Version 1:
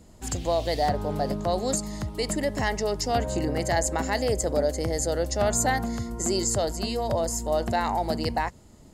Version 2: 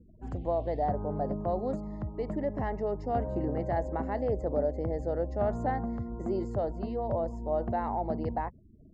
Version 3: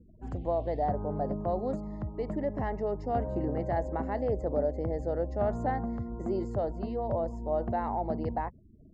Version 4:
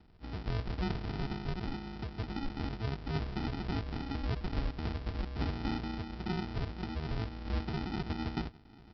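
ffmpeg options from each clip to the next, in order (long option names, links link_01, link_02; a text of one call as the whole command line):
ffmpeg -i in.wav -af "afftfilt=real='re*gte(hypot(re,im),0.00562)':imag='im*gte(hypot(re,im),0.00562)':win_size=1024:overlap=0.75,lowpass=1000,volume=-4dB" out.wav
ffmpeg -i in.wav -af anull out.wav
ffmpeg -i in.wav -af "aecho=1:1:801:0.075,aresample=11025,acrusher=samples=20:mix=1:aa=0.000001,aresample=44100,volume=-4.5dB" out.wav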